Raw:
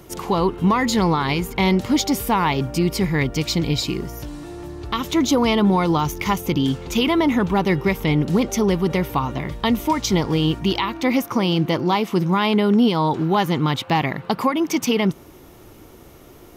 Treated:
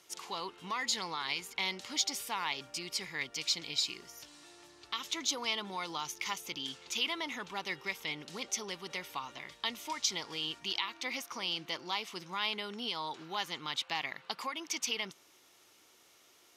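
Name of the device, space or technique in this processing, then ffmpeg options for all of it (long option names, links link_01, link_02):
piezo pickup straight into a mixer: -af "lowpass=5400,aderivative"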